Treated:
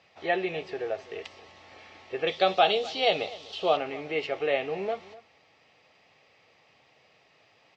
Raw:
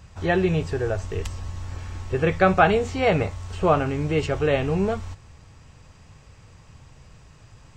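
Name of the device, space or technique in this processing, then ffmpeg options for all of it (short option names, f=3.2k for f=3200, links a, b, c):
phone earpiece: -filter_complex "[0:a]highpass=500,equalizer=f=720:t=q:w=4:g=3,equalizer=f=1k:t=q:w=4:g=-9,equalizer=f=1.5k:t=q:w=4:g=-10,equalizer=f=2.1k:t=q:w=4:g=4,lowpass=f=4.5k:w=0.5412,lowpass=f=4.5k:w=1.3066,asettb=1/sr,asplit=3[a][b][c];[a]atrim=end=2.274[d];[b]atrim=start=2.27:end=3.77,asetpts=PTS-STARTPTS,afade=t=in:d=0.004:c=qsin,afade=t=out:st=1.496:d=0.004:c=qsin,highshelf=f=2.7k:t=q:w=3:g=7.5[e];[c]atrim=start=3.766[f];[d][e]acrossfade=d=0.004:c1=hsin:c2=qsin[g];[g][f]acrossfade=d=0.004:c1=qsin:c2=hsin,asplit=2[h][i];[i]adelay=250.7,volume=-19dB,highshelf=f=4k:g=-5.64[j];[h][j]amix=inputs=2:normalize=0,volume=-2dB"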